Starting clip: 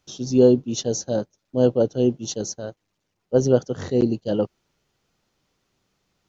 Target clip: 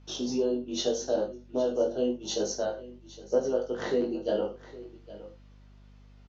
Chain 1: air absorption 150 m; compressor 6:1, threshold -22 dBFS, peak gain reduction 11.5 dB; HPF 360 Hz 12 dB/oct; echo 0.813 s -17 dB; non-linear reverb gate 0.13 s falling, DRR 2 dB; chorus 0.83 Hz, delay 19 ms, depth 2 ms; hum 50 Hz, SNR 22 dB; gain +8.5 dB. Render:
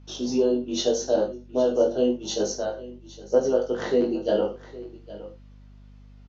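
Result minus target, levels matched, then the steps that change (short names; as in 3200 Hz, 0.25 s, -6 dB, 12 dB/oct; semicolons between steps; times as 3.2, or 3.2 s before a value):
compressor: peak gain reduction -6 dB
change: compressor 6:1, threshold -29 dBFS, peak gain reduction 17.5 dB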